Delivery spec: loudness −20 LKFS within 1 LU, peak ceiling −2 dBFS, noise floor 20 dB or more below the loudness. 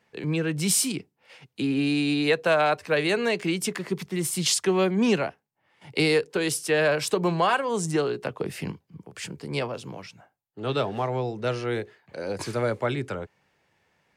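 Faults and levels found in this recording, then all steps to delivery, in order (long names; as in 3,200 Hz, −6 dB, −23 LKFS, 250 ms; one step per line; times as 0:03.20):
integrated loudness −25.5 LKFS; sample peak −10.0 dBFS; target loudness −20.0 LKFS
→ level +5.5 dB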